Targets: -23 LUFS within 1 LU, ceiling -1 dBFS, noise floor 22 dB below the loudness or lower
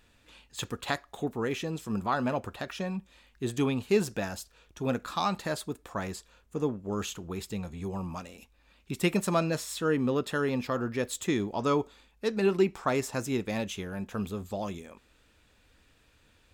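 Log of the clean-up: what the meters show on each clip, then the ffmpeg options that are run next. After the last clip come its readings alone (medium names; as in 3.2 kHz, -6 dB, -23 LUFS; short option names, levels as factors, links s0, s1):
loudness -31.5 LUFS; peak level -12.5 dBFS; loudness target -23.0 LUFS
-> -af "volume=2.66"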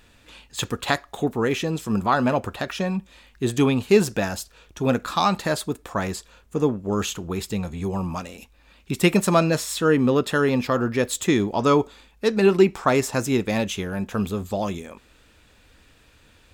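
loudness -23.0 LUFS; peak level -4.0 dBFS; noise floor -56 dBFS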